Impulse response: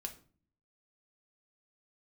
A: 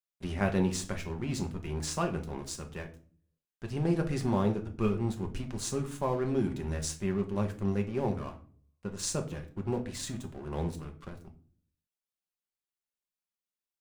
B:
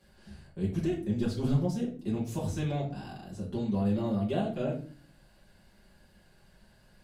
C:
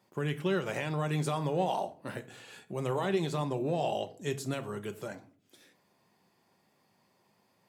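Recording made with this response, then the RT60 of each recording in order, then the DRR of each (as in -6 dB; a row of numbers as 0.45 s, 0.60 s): A; 0.45 s, 0.45 s, 0.45 s; 3.5 dB, -6.0 dB, 8.0 dB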